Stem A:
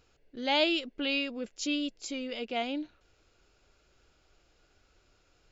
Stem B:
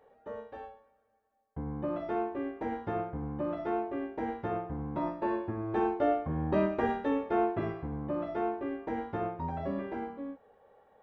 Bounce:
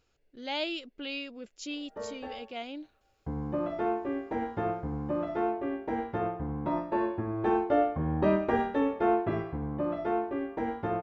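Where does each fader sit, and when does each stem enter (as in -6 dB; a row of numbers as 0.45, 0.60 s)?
-6.5, +2.5 dB; 0.00, 1.70 s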